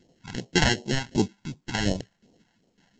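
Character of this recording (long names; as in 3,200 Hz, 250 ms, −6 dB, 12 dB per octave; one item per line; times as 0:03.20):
aliases and images of a low sample rate 1,200 Hz, jitter 0%
tremolo saw down 1.8 Hz, depth 85%
phaser sweep stages 2, 2.7 Hz, lowest notch 360–1,600 Hz
mu-law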